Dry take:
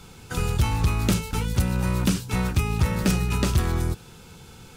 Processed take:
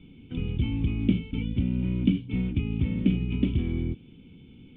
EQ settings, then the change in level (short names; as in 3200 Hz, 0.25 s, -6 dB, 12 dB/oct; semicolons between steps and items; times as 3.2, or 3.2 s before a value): vocal tract filter i; +7.0 dB